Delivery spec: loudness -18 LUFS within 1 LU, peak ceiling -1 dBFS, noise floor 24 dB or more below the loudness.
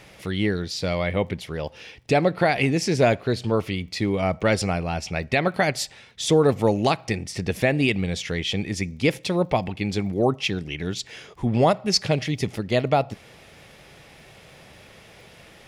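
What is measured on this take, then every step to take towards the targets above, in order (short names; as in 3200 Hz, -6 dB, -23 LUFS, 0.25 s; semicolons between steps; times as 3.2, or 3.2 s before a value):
ticks 24/s; loudness -23.5 LUFS; peak -8.5 dBFS; loudness target -18.0 LUFS
-> de-click; gain +5.5 dB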